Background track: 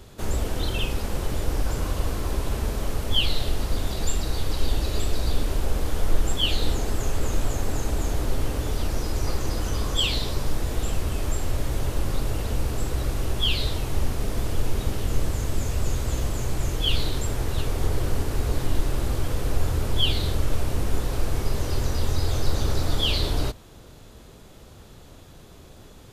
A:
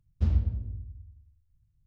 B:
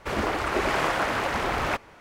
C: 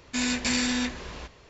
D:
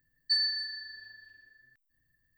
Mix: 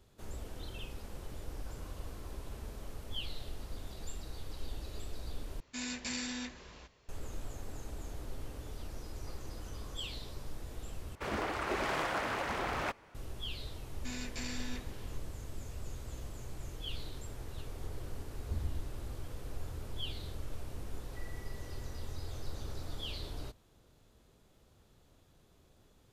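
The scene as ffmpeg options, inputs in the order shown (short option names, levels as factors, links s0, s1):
-filter_complex "[3:a]asplit=2[s0][s1];[0:a]volume=0.126[s2];[s0]highshelf=f=4600:g=3.5[s3];[2:a]aeval=exprs='0.141*(abs(mod(val(0)/0.141+3,4)-2)-1)':c=same[s4];[4:a]lowpass=f=3100:t=q:w=0.5098,lowpass=f=3100:t=q:w=0.6013,lowpass=f=3100:t=q:w=0.9,lowpass=f=3100:t=q:w=2.563,afreqshift=-3700[s5];[s2]asplit=3[s6][s7][s8];[s6]atrim=end=5.604[s9];[s3]atrim=end=1.49,asetpts=PTS-STARTPTS,volume=0.211[s10];[s7]atrim=start=7.086:end=11.154[s11];[s4]atrim=end=2,asetpts=PTS-STARTPTS,volume=0.355[s12];[s8]atrim=start=13.146[s13];[s1]atrim=end=1.49,asetpts=PTS-STARTPTS,volume=0.158,afade=t=in:d=0.004:c=hsin,afade=t=out:st=1.486:d=0.004:c=hsin,adelay=13910[s14];[1:a]atrim=end=1.86,asetpts=PTS-STARTPTS,volume=0.2,afade=t=in:d=0.004:c=hsin,afade=t=out:st=1.856:d=0.004:c=hsin,adelay=18290[s15];[s5]atrim=end=2.37,asetpts=PTS-STARTPTS,volume=0.168,afade=t=in:d=0.004:c=hsin,afade=t=out:st=2.366:d=0.004:c=hsin,adelay=20850[s16];[s9][s10]acrossfade=d=0.004:c1=hsin:c2=hsin[s17];[s17][s11]acrossfade=d=0.004:c1=hsin:c2=hsin[s18];[s18][s12]acrossfade=d=0.004:c1=hsin:c2=hsin[s19];[s19][s13]acrossfade=d=0.004:c1=hsin:c2=hsin[s20];[s20][s14][s15][s16]amix=inputs=4:normalize=0"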